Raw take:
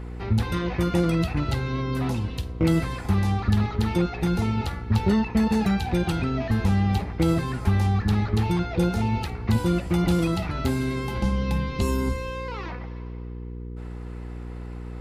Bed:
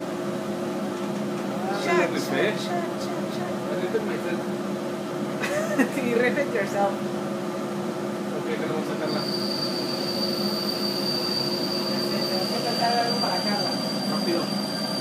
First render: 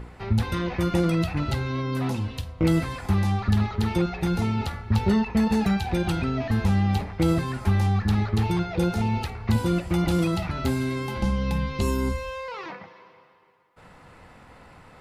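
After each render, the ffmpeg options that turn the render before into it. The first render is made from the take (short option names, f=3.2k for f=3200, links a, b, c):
-af "bandreject=f=60:t=h:w=4,bandreject=f=120:t=h:w=4,bandreject=f=180:t=h:w=4,bandreject=f=240:t=h:w=4,bandreject=f=300:t=h:w=4,bandreject=f=360:t=h:w=4,bandreject=f=420:t=h:w=4,bandreject=f=480:t=h:w=4"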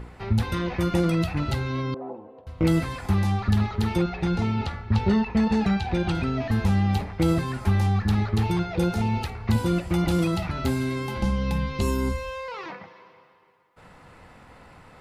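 -filter_complex "[0:a]asettb=1/sr,asplit=3[a][b][c];[a]atrim=end=1.944[d];[b]atrim=start=1.94:end=2.47,asetpts=PTS-STARTPTS,afade=t=in:d=0.004:c=qsin,afade=t=out:st=0.526:d=0.004:c=qsin,asuperpass=centerf=540:order=4:qfactor=1.2[e];[c]atrim=start=2.466[f];[d][e]acrossfade=d=0.004:c1=hsin:c2=qsin[g];[g][f]acrossfade=d=0.004:c1=qsin:c2=hsin,asettb=1/sr,asplit=3[h][i][j];[h]atrim=end=4.034[k];[i]atrim=start=4.03:end=6.15,asetpts=PTS-STARTPTS,afade=t=in:d=0.004:c=qsin,afade=t=out:st=2.116:d=0.004:c=qsin,lowpass=5.6k[l];[j]atrim=start=6.146[m];[k][l]acrossfade=d=0.004:c1=hsin:c2=qsin[n];[n][m]acrossfade=d=0.004:c1=qsin:c2=hsin"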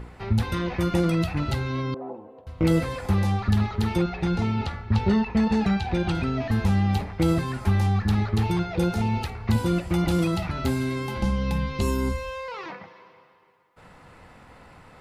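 -filter_complex "[0:a]asettb=1/sr,asplit=3[a][b][c];[a]atrim=end=2.704[d];[b]atrim=start=2.7:end=3.37,asetpts=PTS-STARTPTS,afade=t=in:d=0.004:c=qsin,afade=t=out:st=0.666:d=0.004:c=qsin,equalizer=f=510:t=o:w=0.25:g=10[e];[c]atrim=start=3.366[f];[d][e]acrossfade=d=0.004:c1=hsin:c2=qsin[g];[g][f]acrossfade=d=0.004:c1=qsin:c2=hsin"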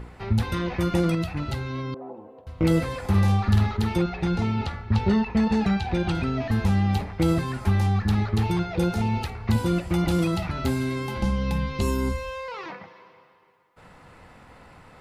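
-filter_complex "[0:a]asettb=1/sr,asplit=3[a][b][c];[a]atrim=end=3.094[d];[b]atrim=start=3.09:end=3.77,asetpts=PTS-STARTPTS,afade=t=in:d=0.004:c=qsin,afade=t=out:st=0.676:d=0.004:c=qsin,asplit=2[e][f];[f]adelay=50,volume=-4dB[g];[e][g]amix=inputs=2:normalize=0,atrim=end_sample=29988[h];[c]atrim=start=3.766[i];[d][h]acrossfade=d=0.004:c1=hsin:c2=qsin[j];[j][i]acrossfade=d=0.004:c1=qsin:c2=hsin,asplit=3[k][l][m];[k]atrim=end=1.152[n];[l]atrim=start=1.148:end=2.172,asetpts=PTS-STARTPTS,volume=-3dB[o];[m]atrim=start=2.168[p];[n][o]acrossfade=d=0.004:c1=hsin:c2=hsin[q];[q][p]acrossfade=d=0.004:c1=hsin:c2=hsin"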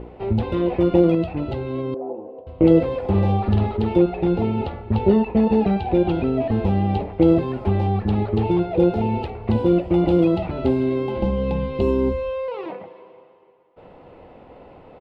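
-af "firequalizer=gain_entry='entry(150,0);entry(360,11);entry(590,10);entry(1200,-4);entry(1700,-8);entry(2800,0);entry(6300,-22);entry(12000,-26)':delay=0.05:min_phase=1"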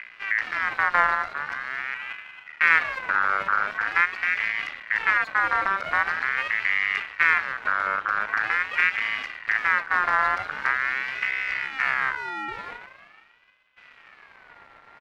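-af "aeval=exprs='max(val(0),0)':c=same,aeval=exprs='val(0)*sin(2*PI*1700*n/s+1700*0.2/0.44*sin(2*PI*0.44*n/s))':c=same"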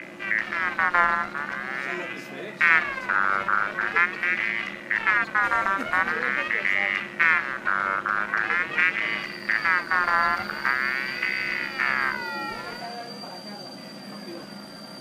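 -filter_complex "[1:a]volume=-13.5dB[a];[0:a][a]amix=inputs=2:normalize=0"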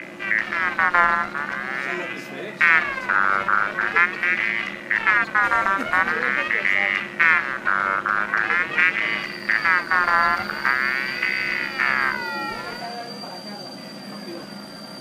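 -af "volume=3.5dB,alimiter=limit=-2dB:level=0:latency=1"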